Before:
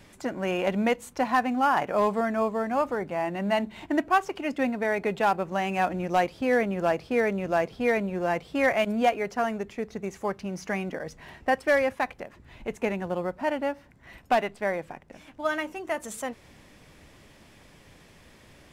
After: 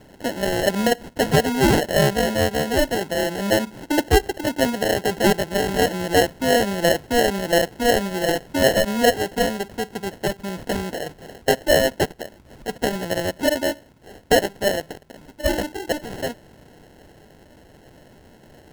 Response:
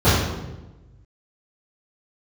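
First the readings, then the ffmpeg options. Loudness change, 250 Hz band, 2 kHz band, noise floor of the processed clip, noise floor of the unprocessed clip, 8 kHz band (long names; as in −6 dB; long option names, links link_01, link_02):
+6.0 dB, +6.0 dB, +5.0 dB, −50 dBFS, −55 dBFS, +16.5 dB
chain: -af "lowshelf=frequency=200:gain=-7.5,acrusher=samples=37:mix=1:aa=0.000001,volume=7dB"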